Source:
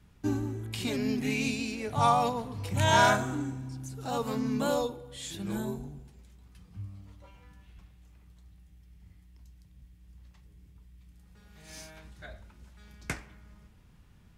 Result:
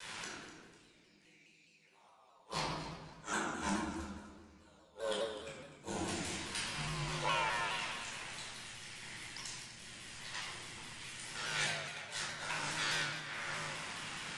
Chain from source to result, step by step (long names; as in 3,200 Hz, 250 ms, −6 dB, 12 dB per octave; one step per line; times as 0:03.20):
high-pass filter 270 Hz 12 dB per octave
tilt shelving filter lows −10 dB, about 660 Hz
downward compressor 10 to 1, threshold −44 dBFS, peak gain reduction 29 dB
gate with flip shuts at −40 dBFS, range −39 dB
downsampling to 22,050 Hz
ring modulation 54 Hz
on a send: delay that swaps between a low-pass and a high-pass 125 ms, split 1,500 Hz, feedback 52%, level −7 dB
on the sum: rectangular room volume 780 cubic metres, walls mixed, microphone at 4.7 metres
pitch modulation by a square or saw wave saw down 4.8 Hz, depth 100 cents
level +13 dB